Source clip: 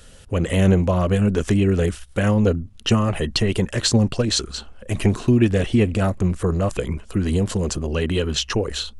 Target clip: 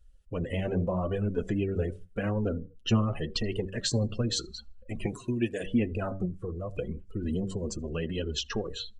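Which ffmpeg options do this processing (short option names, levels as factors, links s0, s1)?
-filter_complex "[0:a]asettb=1/sr,asplit=3[s0][s1][s2];[s0]atrim=end=5.064[s3];[s1]atrim=start=5.06:end=5.66,asetpts=PTS-STARTPTS,afade=t=in:d=0.004:c=qsin,afade=t=out:st=0.596:d=0.004:c=qsin,aemphasis=mode=production:type=bsi[s4];[s2]atrim=start=5.656[s5];[s3][s4]acrossfade=d=0.004:c1=hsin:c2=qsin[s6];[s6][s5]acrossfade=d=0.004:c1=qsin:c2=hsin,aecho=1:1:80|160|240|320:0.1|0.047|0.0221|0.0104,flanger=delay=1.9:depth=7.6:regen=34:speed=0.84:shape=triangular,bandreject=f=95.44:t=h:w=4,bandreject=f=190.88:t=h:w=4,bandreject=f=286.32:t=h:w=4,bandreject=f=381.76:t=h:w=4,bandreject=f=477.2:t=h:w=4,bandreject=f=572.64:t=h:w=4,bandreject=f=668.08:t=h:w=4,bandreject=f=763.52:t=h:w=4,bandreject=f=858.96:t=h:w=4,bandreject=f=954.4:t=h:w=4,bandreject=f=1049.84:t=h:w=4,bandreject=f=1145.28:t=h:w=4,bandreject=f=1240.72:t=h:w=4,bandreject=f=1336.16:t=h:w=4,bandreject=f=1431.6:t=h:w=4,bandreject=f=1527.04:t=h:w=4,bandreject=f=1622.48:t=h:w=4,bandreject=f=1717.92:t=h:w=4,bandreject=f=1813.36:t=h:w=4,bandreject=f=1908.8:t=h:w=4,bandreject=f=2004.24:t=h:w=4,bandreject=f=2099.68:t=h:w=4,bandreject=f=2195.12:t=h:w=4,bandreject=f=2290.56:t=h:w=4,asettb=1/sr,asplit=3[s7][s8][s9];[s7]atrim=end=6.254[s10];[s8]atrim=start=6.25:end=6.77,asetpts=PTS-STARTPTS,afade=t=in:d=0.004:c=qsin,afade=t=out:st=0.516:d=0.004:c=qsin,acompressor=threshold=0.0316:ratio=2[s11];[s9]atrim=start=6.766[s12];[s10][s11]acrossfade=d=0.004:c1=hsin:c2=qsin[s13];[s13][s12]acrossfade=d=0.004:c1=qsin:c2=hsin,afftdn=nr=23:nf=-34,volume=0.531"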